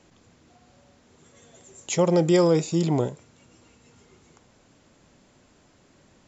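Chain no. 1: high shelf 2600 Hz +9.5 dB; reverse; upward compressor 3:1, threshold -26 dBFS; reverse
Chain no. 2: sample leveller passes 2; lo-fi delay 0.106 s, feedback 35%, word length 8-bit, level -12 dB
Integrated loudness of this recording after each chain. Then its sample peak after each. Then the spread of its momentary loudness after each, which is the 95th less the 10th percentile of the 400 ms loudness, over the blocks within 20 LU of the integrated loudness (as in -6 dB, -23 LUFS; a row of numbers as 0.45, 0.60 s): -24.0, -17.5 LUFS; -4.5, -8.0 dBFS; 19, 9 LU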